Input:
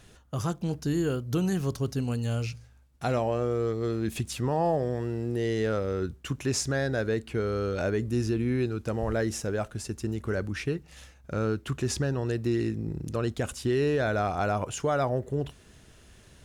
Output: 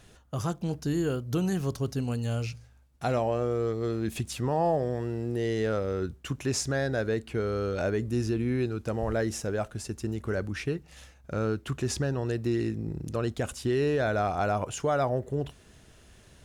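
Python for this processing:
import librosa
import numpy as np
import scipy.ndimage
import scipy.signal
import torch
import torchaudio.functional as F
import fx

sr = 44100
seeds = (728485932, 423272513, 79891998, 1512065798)

y = fx.peak_eq(x, sr, hz=690.0, db=2.0, octaves=0.77)
y = y * librosa.db_to_amplitude(-1.0)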